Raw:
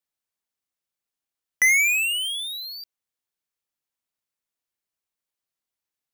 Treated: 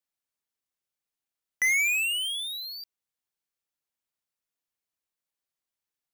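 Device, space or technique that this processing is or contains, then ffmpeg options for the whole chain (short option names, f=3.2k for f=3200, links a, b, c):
saturation between pre-emphasis and de-emphasis: -af "highshelf=f=8.7k:g=7,asoftclip=type=tanh:threshold=-18dB,highshelf=f=8.7k:g=-7,volume=-2.5dB"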